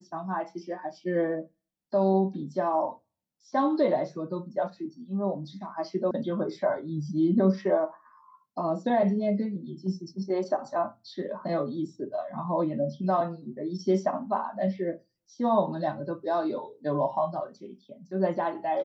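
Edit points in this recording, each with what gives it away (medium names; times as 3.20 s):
6.11 s: sound stops dead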